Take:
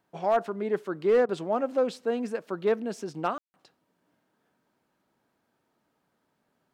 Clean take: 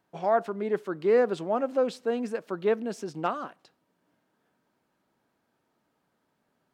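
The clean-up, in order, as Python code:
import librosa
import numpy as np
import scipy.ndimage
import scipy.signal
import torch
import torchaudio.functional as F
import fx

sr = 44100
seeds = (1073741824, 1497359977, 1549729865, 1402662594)

y = fx.fix_declip(x, sr, threshold_db=-16.0)
y = fx.fix_ambience(y, sr, seeds[0], print_start_s=5.98, print_end_s=6.48, start_s=3.38, end_s=3.54)
y = fx.fix_interpolate(y, sr, at_s=(1.26,), length_ms=28.0)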